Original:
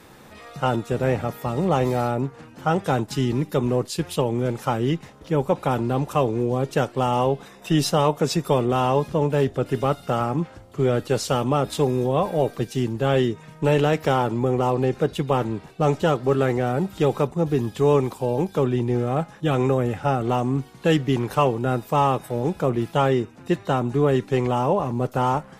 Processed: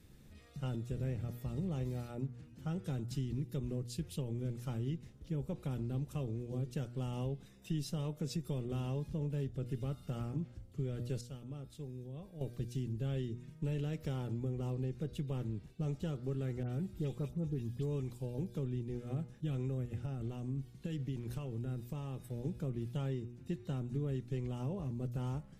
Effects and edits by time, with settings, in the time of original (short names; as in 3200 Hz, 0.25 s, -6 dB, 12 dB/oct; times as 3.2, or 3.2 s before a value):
11.21–12.41 gain -11.5 dB
16.63–18.11 dispersion highs, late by 71 ms, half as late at 2500 Hz
19.85–22.25 compressor, threshold -21 dBFS
whole clip: passive tone stack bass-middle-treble 10-0-1; de-hum 120.6 Hz, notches 13; compressor 3:1, threshold -40 dBFS; gain +5.5 dB